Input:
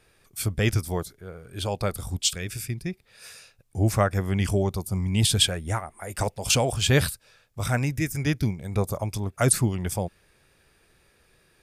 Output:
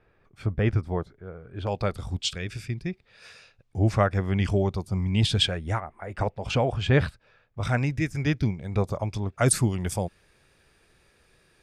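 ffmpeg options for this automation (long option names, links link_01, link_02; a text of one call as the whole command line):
ffmpeg -i in.wav -af "asetnsamples=nb_out_samples=441:pad=0,asendcmd='1.67 lowpass f 4100;5.8 lowpass f 2200;7.63 lowpass f 4300;9.46 lowpass f 9700',lowpass=1700" out.wav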